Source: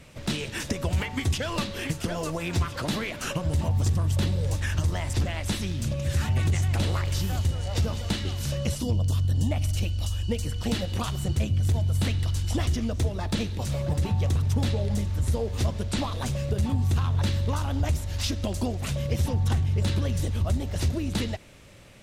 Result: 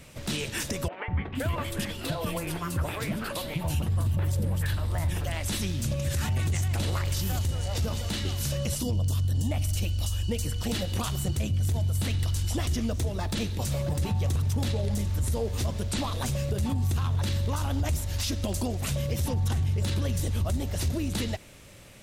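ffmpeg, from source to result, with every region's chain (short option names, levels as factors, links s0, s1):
-filter_complex "[0:a]asettb=1/sr,asplit=3[s0][s1][s2];[s0]atrim=end=0.884[s3];[s1]atrim=start=0.88:end=5.32,asetpts=PTS-STARTPTS,afade=t=in:d=0.004:c=qsin,afade=t=out:st=4.436:d=0.004:c=qsin,equalizer=f=6200:t=o:w=0.9:g=-9.5,acrossover=split=350|2400[s4][s5][s6];[s4]adelay=200[s7];[s6]adelay=470[s8];[s7][s5][s8]amix=inputs=3:normalize=0,atrim=end_sample=195804[s9];[s2]atrim=start=5.316[s10];[s3][s9]acrossfade=d=0.004:c1=hsin:c2=qsin[s11];[s11][s10]acrossfade=d=0.004:c1=qsin:c2=hsin,highshelf=f=8300:g=10,alimiter=limit=0.1:level=0:latency=1:release=23"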